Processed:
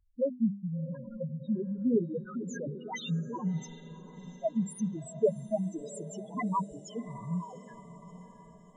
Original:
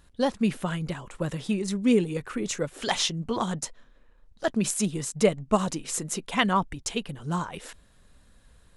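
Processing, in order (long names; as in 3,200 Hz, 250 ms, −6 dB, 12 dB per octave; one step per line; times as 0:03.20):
low-shelf EQ 85 Hz −10.5 dB
mains-hum notches 50/100/150/200/250/300 Hz
0:02.42–0:03.64: transient designer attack −8 dB, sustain +10 dB
spectral peaks only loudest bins 2
feedback delay with all-pass diffusion 705 ms, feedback 55%, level −14.5 dB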